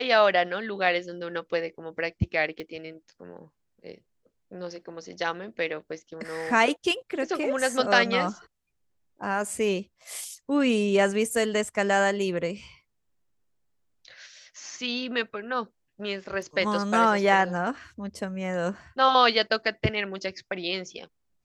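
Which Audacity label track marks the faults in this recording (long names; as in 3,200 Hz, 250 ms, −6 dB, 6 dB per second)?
2.600000	2.600000	click −24 dBFS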